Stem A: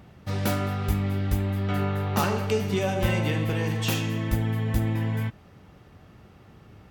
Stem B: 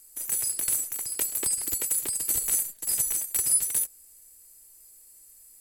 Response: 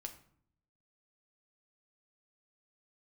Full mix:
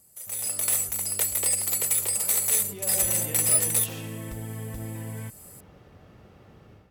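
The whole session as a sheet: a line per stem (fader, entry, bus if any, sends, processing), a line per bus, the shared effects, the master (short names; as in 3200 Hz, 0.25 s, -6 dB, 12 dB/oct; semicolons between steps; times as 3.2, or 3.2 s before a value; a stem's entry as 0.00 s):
2.38 s -22 dB -> 3.09 s -12 dB, 0.00 s, no send, limiter -19.5 dBFS, peak gain reduction 9 dB; compressor, threshold -32 dBFS, peak gain reduction 8.5 dB
-6.0 dB, 0.00 s, no send, one diode to ground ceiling -24.5 dBFS; HPF 460 Hz 24 dB/oct; notch 1600 Hz, Q 9.6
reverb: off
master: bell 520 Hz +5.5 dB 0.68 oct; AGC gain up to 10.5 dB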